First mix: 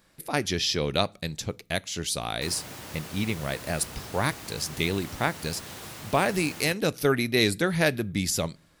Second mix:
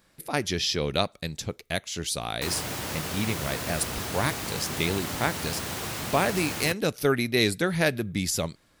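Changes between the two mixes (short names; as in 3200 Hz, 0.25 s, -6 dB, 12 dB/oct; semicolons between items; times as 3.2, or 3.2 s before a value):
background +9.0 dB; reverb: off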